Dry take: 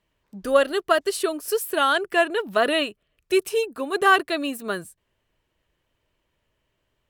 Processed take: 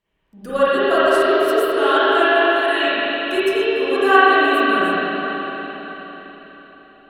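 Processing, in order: 2.3–2.8 elliptic high-pass 1700 Hz; reverb RT60 4.4 s, pre-delay 38 ms, DRR -14 dB; gain -6.5 dB

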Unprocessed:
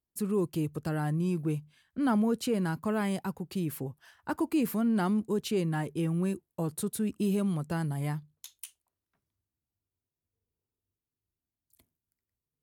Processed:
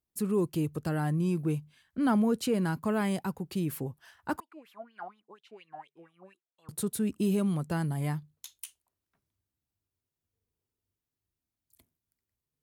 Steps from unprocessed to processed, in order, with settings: 4.4–6.69 wah 4.2 Hz 630–3600 Hz, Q 9.4; gain +1 dB

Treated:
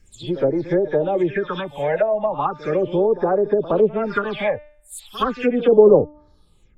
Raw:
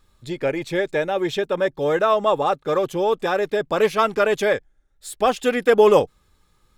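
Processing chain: spectral delay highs early, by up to 0.137 s; phaser stages 6, 0.37 Hz, lowest notch 320–2900 Hz; de-hum 298.3 Hz, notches 28; treble ducked by the level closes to 530 Hz, closed at -17 dBFS; reverse echo 68 ms -16 dB; gain +4.5 dB

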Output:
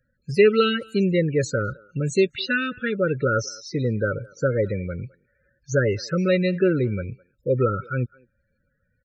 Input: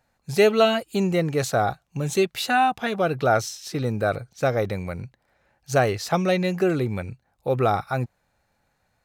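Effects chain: loudest bins only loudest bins 32; Chebyshev band-stop 570–1300 Hz, order 5; speakerphone echo 0.21 s, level -24 dB; gain +2.5 dB

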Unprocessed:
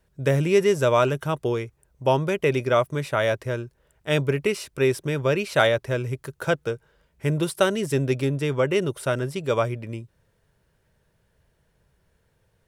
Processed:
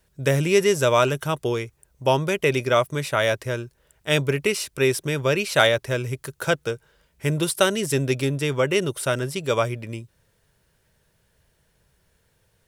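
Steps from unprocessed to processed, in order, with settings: high shelf 2400 Hz +8.5 dB

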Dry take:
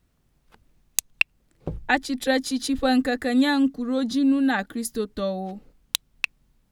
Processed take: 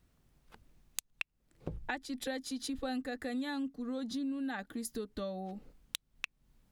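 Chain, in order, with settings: compressor 4:1, threshold -35 dBFS, peak gain reduction 18.5 dB; gain -2.5 dB

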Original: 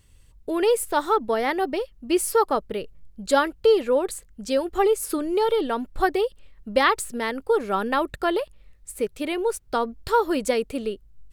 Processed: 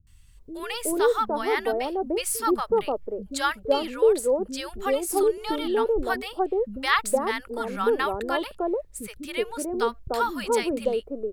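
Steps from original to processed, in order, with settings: three bands offset in time lows, highs, mids 70/370 ms, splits 260/870 Hz

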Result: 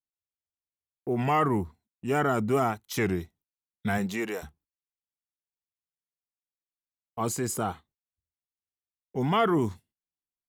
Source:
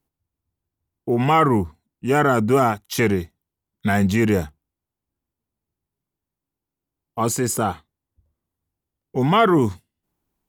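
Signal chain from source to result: gate -49 dBFS, range -21 dB; 3.97–4.42 HPF 160 Hz -> 680 Hz 12 dB/oct; record warp 33 1/3 rpm, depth 100 cents; gain -8 dB

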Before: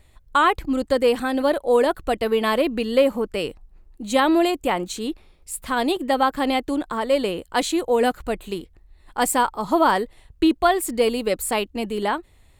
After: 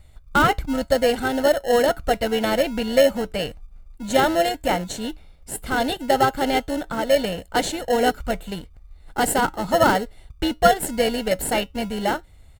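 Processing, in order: comb 1.4 ms, depth 73%; in parallel at -5 dB: sample-and-hold 37×; on the sum: resonator 62 Hz, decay 0.2 s, harmonics odd, mix 30%

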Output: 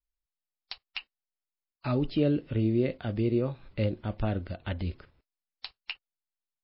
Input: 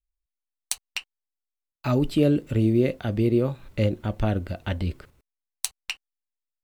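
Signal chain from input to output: gain -5 dB; MP3 24 kbps 12000 Hz

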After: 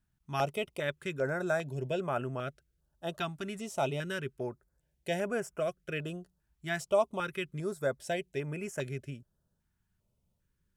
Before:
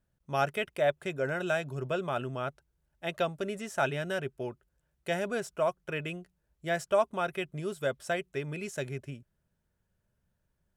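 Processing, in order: stepped notch 2.5 Hz 520–3900 Hz

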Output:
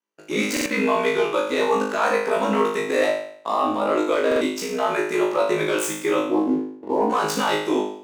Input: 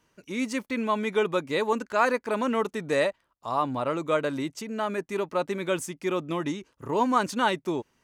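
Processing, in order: tracing distortion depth 0.034 ms; 6.25–7.1 elliptic low-pass 920 Hz; gate -51 dBFS, range -24 dB; HPF 260 Hz 24 dB/oct; in parallel at +1 dB: vocal rider within 4 dB 2 s; on the sum: sample leveller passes 1; limiter -11.5 dBFS, peak gain reduction 9.5 dB; ring modulator 34 Hz; flutter echo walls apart 3.3 m, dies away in 0.61 s; stuck buffer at 0.52/4.27, samples 2048, times 2; gain -1.5 dB

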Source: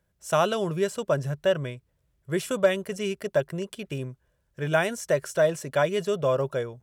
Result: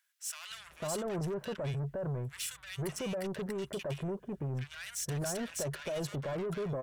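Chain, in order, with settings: bell 140 Hz +5.5 dB 0.24 oct; in parallel at +2 dB: negative-ratio compressor -27 dBFS; on the sum: limiter -18 dBFS, peak gain reduction 10.5 dB; soft clip -28.5 dBFS, distortion -10 dB; bands offset in time highs, lows 0.5 s, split 1400 Hz; gain -4 dB

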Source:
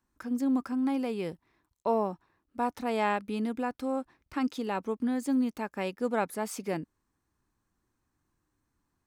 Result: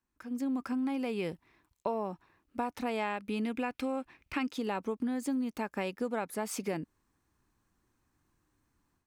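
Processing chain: AGC gain up to 11 dB; bell 2500 Hz +5 dB 0.71 oct, from 3.44 s +12 dB, from 4.48 s +2 dB; compressor 6:1, threshold -22 dBFS, peak gain reduction 10.5 dB; gain -8 dB

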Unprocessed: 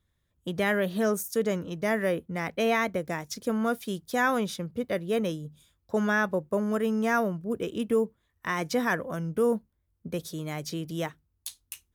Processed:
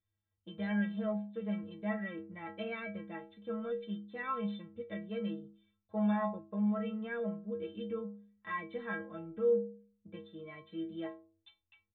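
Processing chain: dynamic EQ 170 Hz, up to +5 dB, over -40 dBFS, Q 1.5; downsampling 8000 Hz; metallic resonator 97 Hz, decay 0.69 s, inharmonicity 0.03; gain +1 dB

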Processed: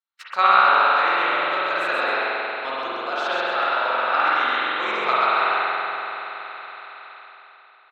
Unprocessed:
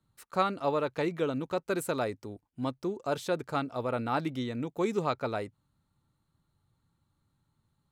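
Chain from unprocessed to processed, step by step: HPF 1400 Hz 12 dB/oct; gate -54 dBFS, range -29 dB; in parallel at +3 dB: level quantiser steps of 17 dB; on the sum: air absorption 210 m; on a send: frequency-shifting echo 0.131 s, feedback 32%, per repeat +110 Hz, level -4 dB; on the sum: spring tank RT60 3.5 s, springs 45 ms, chirp 25 ms, DRR -9 dB; mismatched tape noise reduction encoder only; gain +8.5 dB

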